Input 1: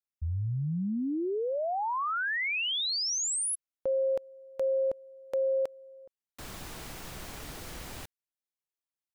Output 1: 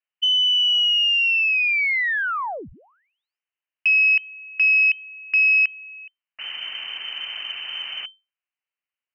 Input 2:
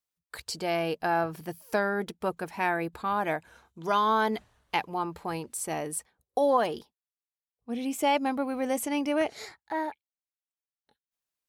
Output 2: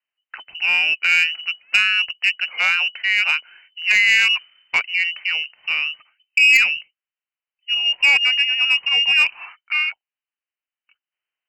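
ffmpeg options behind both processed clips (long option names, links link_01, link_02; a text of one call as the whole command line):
ffmpeg -i in.wav -af "lowpass=frequency=2600:width_type=q:width=0.5098,lowpass=frequency=2600:width_type=q:width=0.6013,lowpass=frequency=2600:width_type=q:width=0.9,lowpass=frequency=2600:width_type=q:width=2.563,afreqshift=-3100,aeval=exprs='0.266*(cos(1*acos(clip(val(0)/0.266,-1,1)))-cos(1*PI/2))+0.0237*(cos(2*acos(clip(val(0)/0.266,-1,1)))-cos(2*PI/2))+0.0119*(cos(5*acos(clip(val(0)/0.266,-1,1)))-cos(5*PI/2))+0.00422*(cos(7*acos(clip(val(0)/0.266,-1,1)))-cos(7*PI/2))':channel_layout=same,crystalizer=i=9:c=0,volume=-1dB" out.wav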